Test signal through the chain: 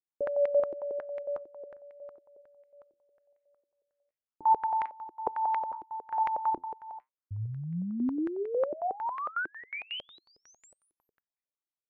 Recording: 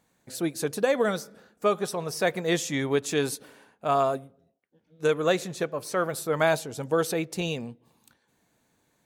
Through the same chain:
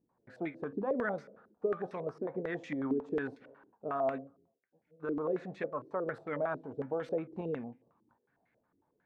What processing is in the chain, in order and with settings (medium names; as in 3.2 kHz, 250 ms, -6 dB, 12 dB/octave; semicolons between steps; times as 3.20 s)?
dynamic bell 260 Hz, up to +8 dB, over -48 dBFS, Q 3.9; peak limiter -19.5 dBFS; flange 0.84 Hz, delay 6.9 ms, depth 5 ms, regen +74%; step-sequenced low-pass 11 Hz 340–2100 Hz; trim -5.5 dB